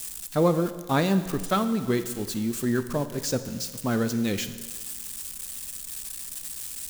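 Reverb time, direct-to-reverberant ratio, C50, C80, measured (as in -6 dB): 1.5 s, 10.0 dB, 12.0 dB, 13.0 dB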